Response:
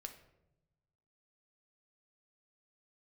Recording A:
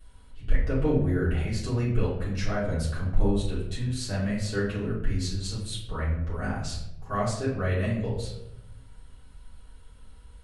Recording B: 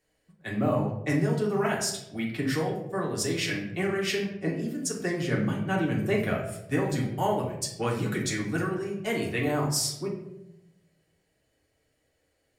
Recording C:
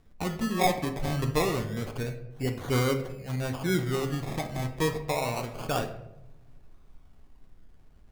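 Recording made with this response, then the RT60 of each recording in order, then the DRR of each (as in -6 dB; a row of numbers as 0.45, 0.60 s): C; 0.90, 0.90, 0.95 s; -11.0, -3.0, 5.0 dB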